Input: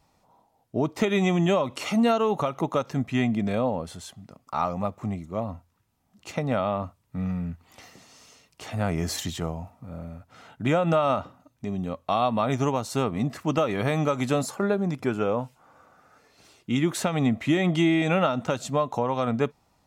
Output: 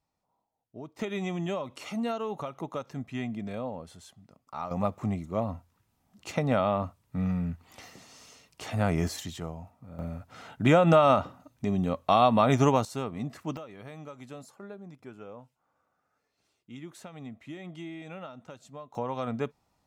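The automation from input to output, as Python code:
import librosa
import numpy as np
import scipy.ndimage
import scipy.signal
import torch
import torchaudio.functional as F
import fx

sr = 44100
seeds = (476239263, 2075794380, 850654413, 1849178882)

y = fx.gain(x, sr, db=fx.steps((0.0, -17.5), (0.99, -10.0), (4.71, 0.0), (9.08, -7.0), (9.99, 2.5), (12.85, -8.0), (13.57, -19.5), (18.95, -7.0)))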